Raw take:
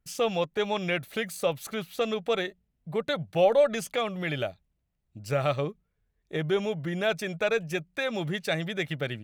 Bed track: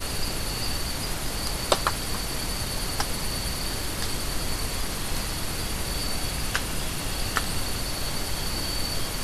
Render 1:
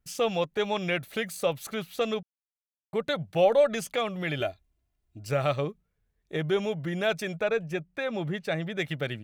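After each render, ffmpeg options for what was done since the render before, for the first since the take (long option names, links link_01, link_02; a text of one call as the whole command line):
ffmpeg -i in.wav -filter_complex "[0:a]asettb=1/sr,asplit=3[link_01][link_02][link_03];[link_01]atrim=end=4.404[link_04];[link_02]atrim=start=4.4:end=5.27,asetpts=PTS-STARTPTS,afade=type=in:duration=0.004:curve=qsin,afade=type=out:start_time=0.866:duration=0.004:curve=qsin,aecho=1:1:2.9:0.64,atrim=end_sample=38367[link_05];[link_03]atrim=start=5.266[link_06];[link_04][link_05]acrossfade=duration=0.004:curve1=hsin:curve2=qsin[link_07];[link_07][link_06]acrossfade=duration=0.004:curve1=qsin:curve2=hsin,asplit=3[link_08][link_09][link_10];[link_08]afade=type=out:start_time=7.4:duration=0.02[link_11];[link_09]highshelf=frequency=3000:gain=-10.5,afade=type=in:start_time=7.4:duration=0.02,afade=type=out:start_time=8.77:duration=0.02[link_12];[link_10]afade=type=in:start_time=8.77:duration=0.02[link_13];[link_11][link_12][link_13]amix=inputs=3:normalize=0,asplit=3[link_14][link_15][link_16];[link_14]atrim=end=2.23,asetpts=PTS-STARTPTS,afade=type=out:start_time=2.226:duration=0.004:curve=hsin[link_17];[link_15]atrim=start=2.23:end=2.93,asetpts=PTS-STARTPTS,volume=0[link_18];[link_16]atrim=start=2.93,asetpts=PTS-STARTPTS,afade=type=in:duration=0.004:curve=hsin[link_19];[link_17][link_18][link_19]concat=n=3:v=0:a=1" out.wav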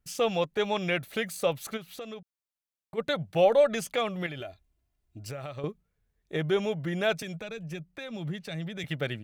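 ffmpeg -i in.wav -filter_complex "[0:a]asplit=3[link_01][link_02][link_03];[link_01]afade=type=out:start_time=1.76:duration=0.02[link_04];[link_02]acompressor=threshold=-42dB:ratio=2.5:attack=3.2:release=140:knee=1:detection=peak,afade=type=in:start_time=1.76:duration=0.02,afade=type=out:start_time=2.97:duration=0.02[link_05];[link_03]afade=type=in:start_time=2.97:duration=0.02[link_06];[link_04][link_05][link_06]amix=inputs=3:normalize=0,asettb=1/sr,asplit=3[link_07][link_08][link_09];[link_07]atrim=end=4.264[link_10];[link_08]atrim=start=4.26:end=5.64,asetpts=PTS-STARTPTS,afade=type=in:duration=0.004:curve=qsin,afade=type=out:start_time=1.376:duration=0.004:curve=qsin,acompressor=threshold=-35dB:ratio=6:attack=3.2:release=140:knee=1:detection=peak[link_11];[link_09]atrim=start=5.636[link_12];[link_10][link_11]acrossfade=duration=0.004:curve1=hsin:curve2=qsin[link_13];[link_13][link_12]acrossfade=duration=0.004:curve1=qsin:curve2=hsin,asettb=1/sr,asplit=3[link_14][link_15][link_16];[link_14]atrim=end=7.224[link_17];[link_15]atrim=start=7.22:end=8.84,asetpts=PTS-STARTPTS,afade=type=in:duration=0.004:curve=qsin,afade=type=out:start_time=1.616:duration=0.004:curve=qsin,acrossover=split=210|3000[link_18][link_19][link_20];[link_19]acompressor=threshold=-41dB:ratio=4:attack=3.2:release=140:knee=2.83:detection=peak[link_21];[link_18][link_21][link_20]amix=inputs=3:normalize=0[link_22];[link_16]atrim=start=8.836[link_23];[link_17][link_22]acrossfade=duration=0.004:curve1=hsin:curve2=qsin[link_24];[link_24][link_23]acrossfade=duration=0.004:curve1=qsin:curve2=hsin" out.wav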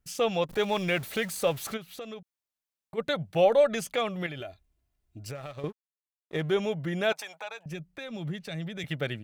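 ffmpeg -i in.wav -filter_complex "[0:a]asettb=1/sr,asplit=3[link_01][link_02][link_03];[link_01]atrim=end=0.494[link_04];[link_02]atrim=start=0.49:end=1.74,asetpts=PTS-STARTPTS,afade=type=in:duration=0.004:curve=qsin,afade=type=out:start_time=1.246:duration=0.004:curve=qsin,aeval=exprs='val(0)+0.5*0.0106*sgn(val(0))':channel_layout=same[link_05];[link_03]atrim=start=1.736[link_06];[link_04][link_05]acrossfade=duration=0.004:curve1=hsin:curve2=qsin[link_07];[link_07][link_06]acrossfade=duration=0.004:curve1=qsin:curve2=hsin,asettb=1/sr,asplit=3[link_08][link_09][link_10];[link_08]atrim=end=5.354[link_11];[link_09]atrim=start=5.35:end=6.54,asetpts=PTS-STARTPTS,afade=type=in:duration=0.004:curve=qsin,afade=type=out:start_time=1.186:duration=0.004:curve=qsin,aeval=exprs='sgn(val(0))*max(abs(val(0))-0.00299,0)':channel_layout=same[link_12];[link_10]atrim=start=6.536[link_13];[link_11][link_12]acrossfade=duration=0.004:curve1=hsin:curve2=qsin[link_14];[link_14][link_13]acrossfade=duration=0.004:curve1=qsin:curve2=hsin,asettb=1/sr,asplit=3[link_15][link_16][link_17];[link_15]atrim=end=7.124[link_18];[link_16]atrim=start=7.12:end=7.66,asetpts=PTS-STARTPTS,afade=type=in:duration=0.004:curve=qsin,afade=type=out:start_time=0.536:duration=0.004:curve=qsin,highpass=frequency=860:width_type=q:width=4.9[link_19];[link_17]atrim=start=7.656[link_20];[link_18][link_19]acrossfade=duration=0.004:curve1=hsin:curve2=qsin[link_21];[link_21][link_20]acrossfade=duration=0.004:curve1=qsin:curve2=hsin" out.wav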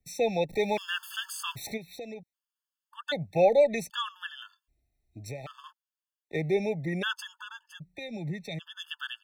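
ffmpeg -i in.wav -filter_complex "[0:a]acrossover=split=140|470|3900[link_01][link_02][link_03][link_04];[link_03]crystalizer=i=2.5:c=0[link_05];[link_01][link_02][link_05][link_04]amix=inputs=4:normalize=0,afftfilt=real='re*gt(sin(2*PI*0.64*pts/sr)*(1-2*mod(floor(b*sr/1024/890),2)),0)':imag='im*gt(sin(2*PI*0.64*pts/sr)*(1-2*mod(floor(b*sr/1024/890),2)),0)':win_size=1024:overlap=0.75" out.wav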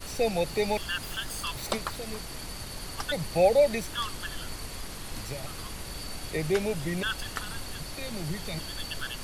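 ffmpeg -i in.wav -i bed.wav -filter_complex "[1:a]volume=-9.5dB[link_01];[0:a][link_01]amix=inputs=2:normalize=0" out.wav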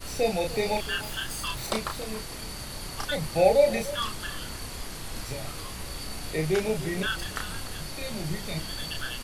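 ffmpeg -i in.wav -filter_complex "[0:a]asplit=2[link_01][link_02];[link_02]adelay=32,volume=-4dB[link_03];[link_01][link_03]amix=inputs=2:normalize=0,asplit=2[link_04][link_05];[link_05]adelay=297.4,volume=-16dB,highshelf=frequency=4000:gain=-6.69[link_06];[link_04][link_06]amix=inputs=2:normalize=0" out.wav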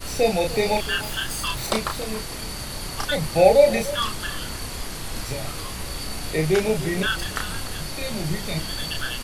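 ffmpeg -i in.wav -af "volume=5.5dB" out.wav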